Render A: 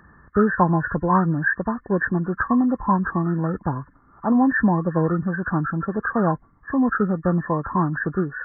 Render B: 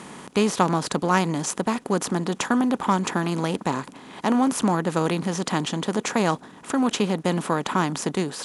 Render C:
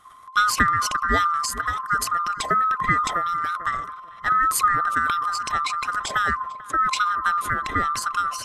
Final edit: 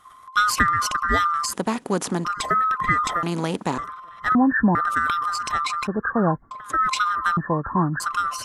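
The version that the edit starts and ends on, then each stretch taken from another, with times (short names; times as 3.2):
C
1.53–2.25 from B
3.23–3.78 from B
4.35–4.75 from A
5.87–6.51 from A
7.37–8 from A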